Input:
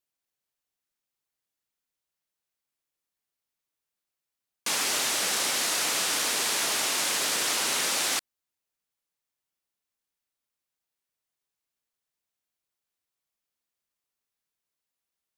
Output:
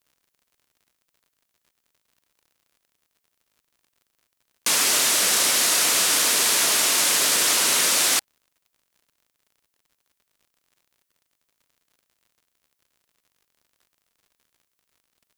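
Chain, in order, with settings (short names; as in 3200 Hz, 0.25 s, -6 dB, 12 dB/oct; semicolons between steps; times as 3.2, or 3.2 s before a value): high shelf 7600 Hz +6.5 dB; crackle 80/s -54 dBFS; notch 810 Hz, Q 12; gain +5 dB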